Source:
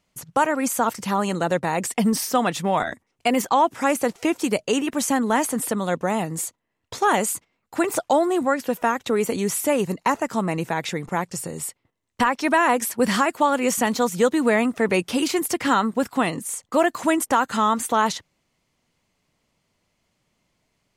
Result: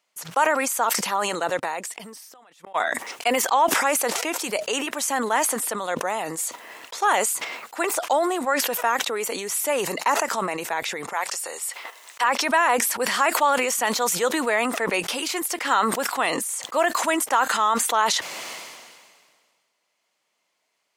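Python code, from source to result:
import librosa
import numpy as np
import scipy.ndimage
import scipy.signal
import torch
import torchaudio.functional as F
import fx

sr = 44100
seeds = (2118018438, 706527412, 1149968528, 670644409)

y = fx.gate_flip(x, sr, shuts_db=-17.0, range_db=-35, at=(1.58, 2.74), fade=0.02)
y = fx.highpass(y, sr, hz=650.0, slope=12, at=(11.13, 12.24))
y = scipy.signal.sosfilt(scipy.signal.butter(2, 600.0, 'highpass', fs=sr, output='sos'), y)
y = fx.sustainer(y, sr, db_per_s=33.0)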